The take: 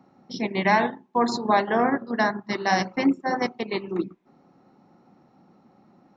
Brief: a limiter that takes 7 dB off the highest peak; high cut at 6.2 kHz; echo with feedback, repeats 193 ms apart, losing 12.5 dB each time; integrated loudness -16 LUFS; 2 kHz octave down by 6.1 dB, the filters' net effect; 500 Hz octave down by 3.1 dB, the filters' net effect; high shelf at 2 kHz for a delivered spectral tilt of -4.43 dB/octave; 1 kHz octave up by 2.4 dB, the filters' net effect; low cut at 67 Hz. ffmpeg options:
-af "highpass=67,lowpass=6200,equalizer=f=500:t=o:g=-6,equalizer=f=1000:t=o:g=7.5,highshelf=f=2000:g=-4,equalizer=f=2000:t=o:g=-7.5,alimiter=limit=0.188:level=0:latency=1,aecho=1:1:193|386|579:0.237|0.0569|0.0137,volume=3.55"

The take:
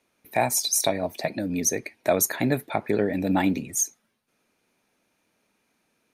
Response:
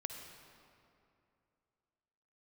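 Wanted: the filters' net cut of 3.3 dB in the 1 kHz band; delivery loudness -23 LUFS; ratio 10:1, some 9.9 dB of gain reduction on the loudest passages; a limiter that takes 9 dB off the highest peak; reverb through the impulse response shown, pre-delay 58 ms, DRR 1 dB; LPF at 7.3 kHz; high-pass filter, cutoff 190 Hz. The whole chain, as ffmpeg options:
-filter_complex "[0:a]highpass=190,lowpass=7300,equalizer=f=1000:t=o:g=-5,acompressor=threshold=0.0355:ratio=10,alimiter=limit=0.0668:level=0:latency=1,asplit=2[s0][s1];[1:a]atrim=start_sample=2205,adelay=58[s2];[s1][s2]afir=irnorm=-1:irlink=0,volume=1[s3];[s0][s3]amix=inputs=2:normalize=0,volume=3.16"

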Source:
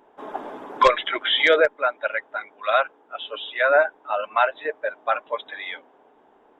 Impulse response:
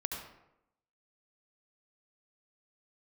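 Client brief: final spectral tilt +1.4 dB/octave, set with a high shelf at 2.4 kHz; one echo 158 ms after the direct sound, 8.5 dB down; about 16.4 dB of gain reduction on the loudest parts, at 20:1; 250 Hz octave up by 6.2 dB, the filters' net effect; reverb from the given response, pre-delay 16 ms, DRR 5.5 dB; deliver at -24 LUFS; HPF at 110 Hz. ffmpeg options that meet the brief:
-filter_complex "[0:a]highpass=110,equalizer=f=250:t=o:g=9,highshelf=f=2400:g=3.5,acompressor=threshold=0.0501:ratio=20,aecho=1:1:158:0.376,asplit=2[s0][s1];[1:a]atrim=start_sample=2205,adelay=16[s2];[s1][s2]afir=irnorm=-1:irlink=0,volume=0.422[s3];[s0][s3]amix=inputs=2:normalize=0,volume=2.11"

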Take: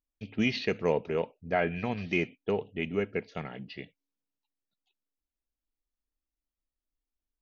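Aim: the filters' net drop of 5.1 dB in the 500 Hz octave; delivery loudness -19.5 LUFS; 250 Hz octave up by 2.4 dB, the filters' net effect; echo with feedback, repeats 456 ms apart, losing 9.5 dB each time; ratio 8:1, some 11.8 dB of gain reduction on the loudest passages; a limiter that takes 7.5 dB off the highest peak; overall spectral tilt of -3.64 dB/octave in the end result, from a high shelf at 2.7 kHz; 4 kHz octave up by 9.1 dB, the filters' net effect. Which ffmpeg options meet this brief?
-af "equalizer=f=250:t=o:g=5,equalizer=f=500:t=o:g=-8.5,highshelf=f=2700:g=8.5,equalizer=f=4000:t=o:g=5,acompressor=threshold=0.0251:ratio=8,alimiter=level_in=1.19:limit=0.0631:level=0:latency=1,volume=0.841,aecho=1:1:456|912|1368|1824:0.335|0.111|0.0365|0.012,volume=10"

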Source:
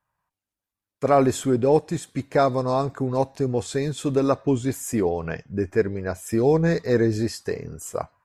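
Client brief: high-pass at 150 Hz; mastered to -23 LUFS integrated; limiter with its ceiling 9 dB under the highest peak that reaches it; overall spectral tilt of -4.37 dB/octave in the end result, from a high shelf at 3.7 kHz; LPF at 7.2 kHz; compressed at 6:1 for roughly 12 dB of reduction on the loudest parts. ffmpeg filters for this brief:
-af "highpass=150,lowpass=7200,highshelf=f=3700:g=7.5,acompressor=threshold=0.0447:ratio=6,volume=3.55,alimiter=limit=0.251:level=0:latency=1"

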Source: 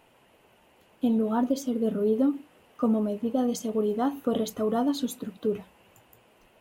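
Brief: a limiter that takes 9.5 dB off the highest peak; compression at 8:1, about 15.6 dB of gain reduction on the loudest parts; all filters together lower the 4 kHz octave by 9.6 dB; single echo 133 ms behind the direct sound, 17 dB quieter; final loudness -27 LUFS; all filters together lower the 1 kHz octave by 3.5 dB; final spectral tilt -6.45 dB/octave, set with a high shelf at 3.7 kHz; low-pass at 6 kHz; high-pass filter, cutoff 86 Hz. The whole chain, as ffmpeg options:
-af "highpass=86,lowpass=6000,equalizer=f=1000:t=o:g=-4.5,highshelf=f=3700:g=-7,equalizer=f=4000:t=o:g=-6.5,acompressor=threshold=0.0141:ratio=8,alimiter=level_in=3.76:limit=0.0631:level=0:latency=1,volume=0.266,aecho=1:1:133:0.141,volume=7.5"

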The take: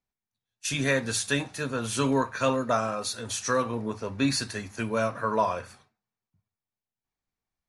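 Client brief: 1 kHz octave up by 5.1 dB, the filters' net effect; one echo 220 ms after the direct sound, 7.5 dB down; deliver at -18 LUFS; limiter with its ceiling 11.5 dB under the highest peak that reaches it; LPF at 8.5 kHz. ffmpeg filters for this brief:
-af "lowpass=8500,equalizer=f=1000:t=o:g=6,alimiter=limit=0.0944:level=0:latency=1,aecho=1:1:220:0.422,volume=3.98"

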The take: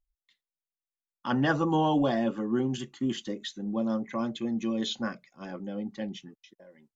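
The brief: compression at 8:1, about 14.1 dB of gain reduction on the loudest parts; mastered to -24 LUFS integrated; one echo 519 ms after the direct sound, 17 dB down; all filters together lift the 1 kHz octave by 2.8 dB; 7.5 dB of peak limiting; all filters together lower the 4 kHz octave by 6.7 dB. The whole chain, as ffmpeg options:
-af "equalizer=f=1000:t=o:g=4,equalizer=f=4000:t=o:g=-9,acompressor=threshold=0.0178:ratio=8,alimiter=level_in=2.37:limit=0.0631:level=0:latency=1,volume=0.422,aecho=1:1:519:0.141,volume=7.5"

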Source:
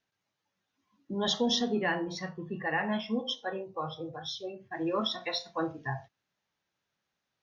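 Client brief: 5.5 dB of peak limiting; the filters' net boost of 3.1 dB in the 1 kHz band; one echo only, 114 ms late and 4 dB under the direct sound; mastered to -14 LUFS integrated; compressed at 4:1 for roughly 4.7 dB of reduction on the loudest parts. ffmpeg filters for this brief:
-af "equalizer=f=1000:t=o:g=4,acompressor=threshold=0.0355:ratio=4,alimiter=level_in=1.19:limit=0.0631:level=0:latency=1,volume=0.841,aecho=1:1:114:0.631,volume=11.2"

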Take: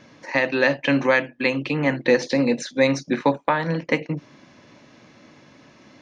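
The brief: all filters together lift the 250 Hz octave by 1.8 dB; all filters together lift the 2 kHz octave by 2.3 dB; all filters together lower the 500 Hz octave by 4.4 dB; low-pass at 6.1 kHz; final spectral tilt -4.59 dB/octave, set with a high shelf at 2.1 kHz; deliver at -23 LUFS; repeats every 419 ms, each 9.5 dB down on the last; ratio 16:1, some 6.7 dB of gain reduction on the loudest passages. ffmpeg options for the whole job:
-af "lowpass=6100,equalizer=f=250:t=o:g=3.5,equalizer=f=500:t=o:g=-5.5,equalizer=f=2000:t=o:g=5,highshelf=f=2100:g=-4,acompressor=threshold=0.1:ratio=16,aecho=1:1:419|838|1257|1676:0.335|0.111|0.0365|0.012,volume=1.41"

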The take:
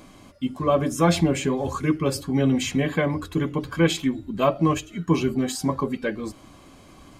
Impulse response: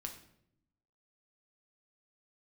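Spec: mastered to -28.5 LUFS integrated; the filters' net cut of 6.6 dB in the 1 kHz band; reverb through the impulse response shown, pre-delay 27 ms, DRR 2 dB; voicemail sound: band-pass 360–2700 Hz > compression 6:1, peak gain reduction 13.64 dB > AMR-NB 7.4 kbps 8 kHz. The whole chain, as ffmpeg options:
-filter_complex "[0:a]equalizer=f=1000:t=o:g=-8,asplit=2[s0][s1];[1:a]atrim=start_sample=2205,adelay=27[s2];[s1][s2]afir=irnorm=-1:irlink=0,volume=1.06[s3];[s0][s3]amix=inputs=2:normalize=0,highpass=360,lowpass=2700,acompressor=threshold=0.0282:ratio=6,volume=2.51" -ar 8000 -c:a libopencore_amrnb -b:a 7400

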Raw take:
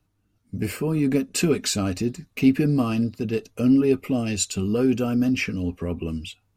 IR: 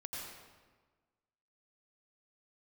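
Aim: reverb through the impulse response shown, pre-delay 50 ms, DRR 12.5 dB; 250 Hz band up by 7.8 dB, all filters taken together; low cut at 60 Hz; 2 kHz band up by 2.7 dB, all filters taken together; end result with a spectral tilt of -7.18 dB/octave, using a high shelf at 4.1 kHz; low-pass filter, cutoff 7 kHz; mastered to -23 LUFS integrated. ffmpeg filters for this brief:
-filter_complex "[0:a]highpass=60,lowpass=7000,equalizer=f=250:t=o:g=8.5,equalizer=f=2000:t=o:g=5,highshelf=f=4100:g=-4.5,asplit=2[s0][s1];[1:a]atrim=start_sample=2205,adelay=50[s2];[s1][s2]afir=irnorm=-1:irlink=0,volume=0.251[s3];[s0][s3]amix=inputs=2:normalize=0,volume=0.501"

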